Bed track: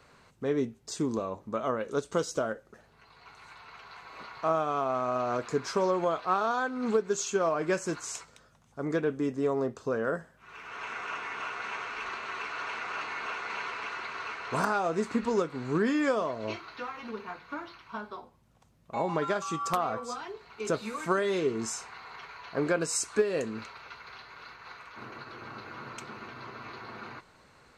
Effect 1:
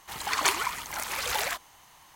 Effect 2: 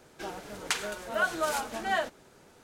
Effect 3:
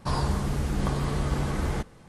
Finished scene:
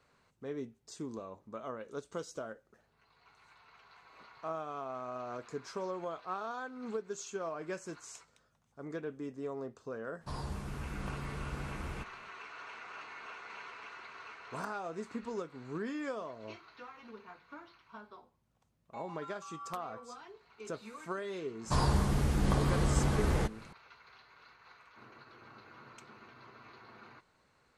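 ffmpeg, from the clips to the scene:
-filter_complex "[3:a]asplit=2[s0][s1];[0:a]volume=0.266[s2];[s0]atrim=end=2.08,asetpts=PTS-STARTPTS,volume=0.211,afade=t=in:d=0.004:c=hsin,afade=t=out:st=2.076:d=0.004:c=hsin,adelay=10210[s3];[s1]atrim=end=2.08,asetpts=PTS-STARTPTS,volume=0.794,afade=t=in:d=0.004:c=hsin,afade=t=out:st=2.076:d=0.004:c=hsin,adelay=21650[s4];[s2][s3][s4]amix=inputs=3:normalize=0"

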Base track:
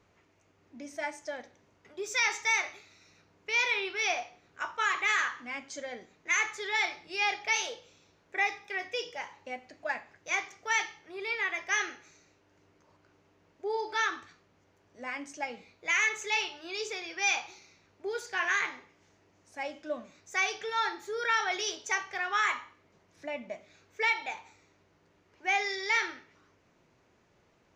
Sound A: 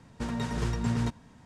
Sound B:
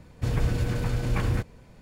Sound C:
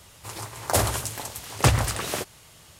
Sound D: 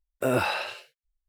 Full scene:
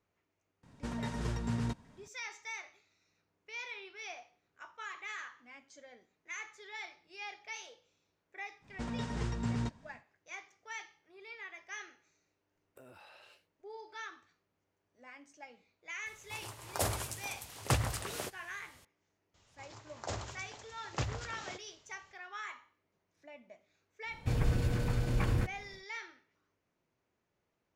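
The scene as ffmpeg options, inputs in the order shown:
-filter_complex "[1:a]asplit=2[s0][s1];[3:a]asplit=2[s2][s3];[0:a]volume=0.168[s4];[s1]lowpass=f=8600:w=0.5412,lowpass=f=8600:w=1.3066[s5];[4:a]acompressor=threshold=0.0126:ratio=6:attack=3.2:release=140:knee=1:detection=peak[s6];[s3]aresample=16000,aresample=44100[s7];[s0]atrim=end=1.45,asetpts=PTS-STARTPTS,volume=0.501,afade=t=in:d=0.004:c=hsin,afade=t=out:st=1.446:d=0.004:c=hsin,adelay=630[s8];[s5]atrim=end=1.45,asetpts=PTS-STARTPTS,volume=0.501,afade=t=in:d=0.1,afade=t=out:st=1.35:d=0.1,adelay=8590[s9];[s6]atrim=end=1.28,asetpts=PTS-STARTPTS,volume=0.158,afade=t=in:d=0.004:c=hsin,afade=t=out:st=1.276:d=0.004:c=hsin,adelay=12550[s10];[s2]atrim=end=2.79,asetpts=PTS-STARTPTS,volume=0.282,afade=t=in:d=0.004:c=hsin,afade=t=out:st=2.786:d=0.004:c=hsin,adelay=16060[s11];[s7]atrim=end=2.79,asetpts=PTS-STARTPTS,volume=0.15,afade=t=in:d=0.004:c=hsin,afade=t=out:st=2.786:d=0.004:c=hsin,adelay=19340[s12];[2:a]atrim=end=1.81,asetpts=PTS-STARTPTS,volume=0.562,afade=t=in:d=0.1,afade=t=out:st=1.71:d=0.1,adelay=24040[s13];[s4][s8][s9][s10][s11][s12][s13]amix=inputs=7:normalize=0"

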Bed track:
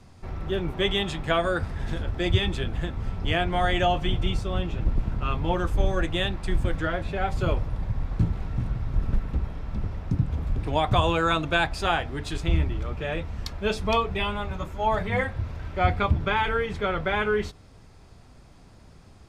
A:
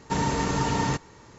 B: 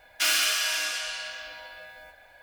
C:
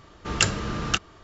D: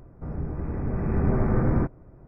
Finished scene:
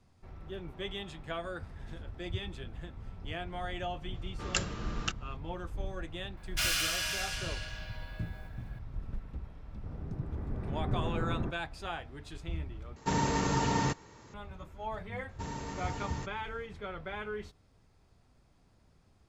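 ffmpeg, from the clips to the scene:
-filter_complex "[1:a]asplit=2[s0][s1];[0:a]volume=0.188,asplit=2[s2][s3];[s2]atrim=end=12.964[s4];[s0]atrim=end=1.38,asetpts=PTS-STARTPTS,volume=0.631[s5];[s3]atrim=start=14.336[s6];[3:a]atrim=end=1.23,asetpts=PTS-STARTPTS,volume=0.299,afade=t=in:d=0.004:c=hsin,afade=t=out:st=1.226:d=0.004:c=hsin,adelay=4140[s7];[2:a]atrim=end=2.42,asetpts=PTS-STARTPTS,volume=0.447,afade=t=in:d=0.004:c=hsin,afade=t=out:st=2.416:d=0.004:c=hsin,adelay=6370[s8];[4:a]atrim=end=2.27,asetpts=PTS-STARTPTS,volume=0.266,afade=t=in:d=0.004:c=hsin,afade=t=out:st=2.266:d=0.004:c=hsin,adelay=9640[s9];[s1]atrim=end=1.38,asetpts=PTS-STARTPTS,volume=0.178,afade=t=in:d=0.004:c=hsin,afade=t=out:st=1.376:d=0.004:c=hsin,adelay=15290[s10];[s4][s5]acrossfade=d=0.004:c1=hsin:c2=hsin[s11];[s11][s6]acrossfade=d=0.004:c1=hsin:c2=hsin[s12];[s12][s7][s8][s9][s10]amix=inputs=5:normalize=0"

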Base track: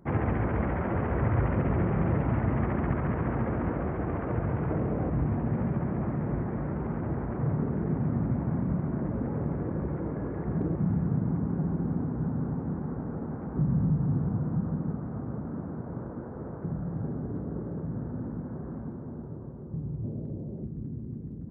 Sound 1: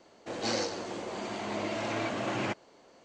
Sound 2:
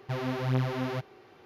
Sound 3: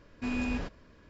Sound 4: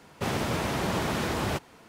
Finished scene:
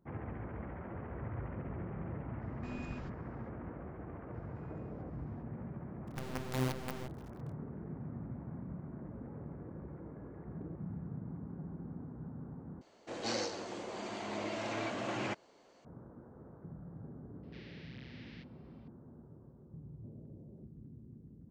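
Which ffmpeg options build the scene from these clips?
-filter_complex "[3:a]asplit=2[s0][s1];[2:a]asplit=2[s2][s3];[0:a]volume=0.168[s4];[s1]acompressor=threshold=0.00251:ratio=6:attack=3.2:release=140:knee=1:detection=peak[s5];[s2]acrusher=bits=5:dc=4:mix=0:aa=0.000001[s6];[s3]asuperpass=centerf=3100:order=8:qfactor=0.85[s7];[s4]asplit=2[s8][s9];[s8]atrim=end=12.814[s10];[1:a]atrim=end=3.04,asetpts=PTS-STARTPTS,volume=0.562[s11];[s9]atrim=start=15.846[s12];[s0]atrim=end=1.09,asetpts=PTS-STARTPTS,volume=0.2,afade=t=in:d=0.004:c=hsin,afade=t=out:st=1.086:d=0.004:c=hsin,adelay=2410[s13];[s5]atrim=end=1.09,asetpts=PTS-STARTPTS,volume=0.168,afade=t=in:d=0.004:c=hsin,afade=t=out:st=1.086:d=0.004:c=hsin,adelay=4340[s14];[s6]atrim=end=1.45,asetpts=PTS-STARTPTS,volume=0.398,afade=t=in:d=0.004:c=hsin,afade=t=out:st=1.446:d=0.004:c=hsin,adelay=6070[s15];[s7]atrim=end=1.45,asetpts=PTS-STARTPTS,volume=0.237,afade=t=in:d=0.004:c=hsin,afade=t=out:st=1.446:d=0.004:c=hsin,adelay=17430[s16];[s10][s11]acrossfade=d=0.004:c1=hsin:c2=hsin[s17];[s17][s12]acrossfade=d=0.004:c1=hsin:c2=hsin[s18];[s18][s13][s14][s15][s16]amix=inputs=5:normalize=0"

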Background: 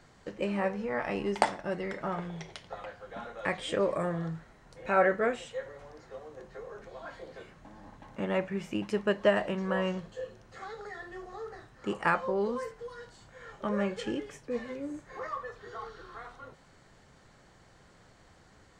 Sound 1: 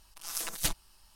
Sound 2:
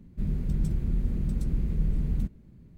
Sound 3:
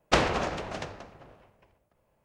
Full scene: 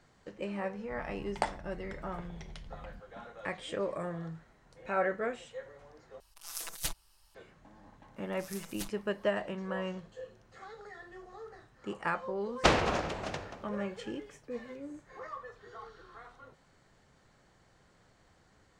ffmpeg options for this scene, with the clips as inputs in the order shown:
-filter_complex "[1:a]asplit=2[s0][s1];[0:a]volume=0.501[s2];[2:a]alimiter=level_in=1.33:limit=0.0631:level=0:latency=1:release=71,volume=0.75[s3];[s0]equalizer=f=240:t=o:w=0.65:g=-9[s4];[s2]asplit=2[s5][s6];[s5]atrim=end=6.204[s7];[s4]atrim=end=1.15,asetpts=PTS-STARTPTS,volume=0.562[s8];[s6]atrim=start=7.346[s9];[s3]atrim=end=2.77,asetpts=PTS-STARTPTS,volume=0.178,afade=t=in:d=0.004:c=hsin,afade=t=out:st=2.766:d=0.004:c=hsin,adelay=730[s10];[s1]atrim=end=1.15,asetpts=PTS-STARTPTS,volume=0.251,afade=t=in:d=0.004:c=hsin,afade=t=out:st=1.146:d=0.004:c=hsin,adelay=8160[s11];[3:a]atrim=end=2.24,asetpts=PTS-STARTPTS,volume=0.841,afade=t=in:d=0.004:c=hsin,afade=t=out:st=2.236:d=0.004:c=hsin,adelay=552132S[s12];[s7][s8]acrossfade=d=0.004:c1=hsin:c2=hsin[s13];[s13][s9]acrossfade=d=0.004:c1=hsin:c2=hsin[s14];[s14][s10][s11][s12]amix=inputs=4:normalize=0"

